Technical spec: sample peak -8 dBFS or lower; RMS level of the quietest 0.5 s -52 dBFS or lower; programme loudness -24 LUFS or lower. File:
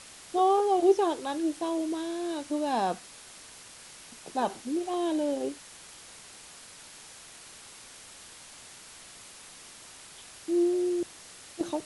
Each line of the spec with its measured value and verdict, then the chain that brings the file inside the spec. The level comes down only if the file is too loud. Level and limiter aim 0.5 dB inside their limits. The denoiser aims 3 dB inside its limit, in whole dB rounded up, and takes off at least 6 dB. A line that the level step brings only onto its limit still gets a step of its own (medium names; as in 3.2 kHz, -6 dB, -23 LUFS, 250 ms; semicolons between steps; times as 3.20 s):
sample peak -11.5 dBFS: pass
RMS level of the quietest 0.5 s -49 dBFS: fail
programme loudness -29.0 LUFS: pass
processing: noise reduction 6 dB, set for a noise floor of -49 dBFS